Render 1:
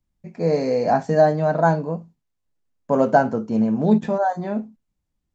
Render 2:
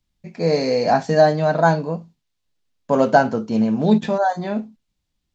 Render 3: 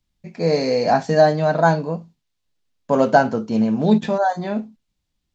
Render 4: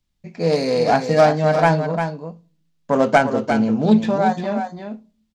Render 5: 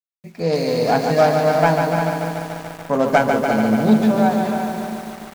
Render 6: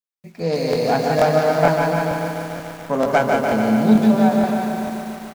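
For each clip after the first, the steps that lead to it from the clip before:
bell 3800 Hz +10.5 dB 1.7 oct; gain +1 dB
nothing audible
self-modulated delay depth 0.16 ms; echo 0.35 s -7.5 dB; on a send at -23 dB: reverb RT60 0.55 s, pre-delay 6 ms
bit-crush 9-bit; lo-fi delay 0.145 s, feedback 80%, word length 6-bit, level -5.5 dB; gain -1.5 dB
on a send: echo 0.177 s -5 dB; on the sum: crackling interface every 0.46 s, samples 1024, repeat, from 0.71; gain -2 dB

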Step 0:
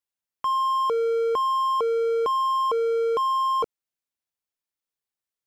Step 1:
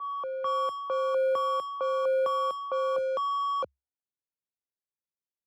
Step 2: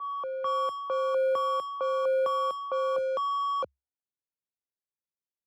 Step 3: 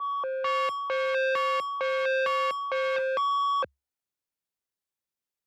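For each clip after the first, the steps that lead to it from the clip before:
reverse echo 0.662 s -4.5 dB; low-pass opened by the level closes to 510 Hz, open at -17.5 dBFS; frequency shift +68 Hz; gain -6 dB
nothing audible
core saturation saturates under 1600 Hz; gain +4 dB

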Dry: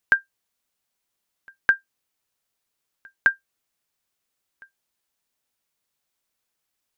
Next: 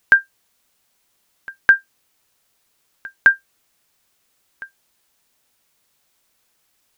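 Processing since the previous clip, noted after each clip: maximiser +14.5 dB; gain -1 dB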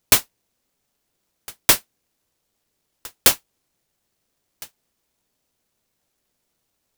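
high shelf 3400 Hz -11.5 dB; noise-modulated delay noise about 5700 Hz, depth 0.25 ms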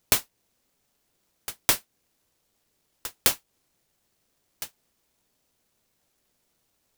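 compressor 2.5:1, threshold -24 dBFS, peak gain reduction 10 dB; gain +1.5 dB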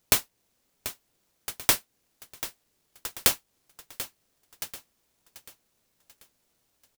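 feedback echo 0.738 s, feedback 42%, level -13.5 dB

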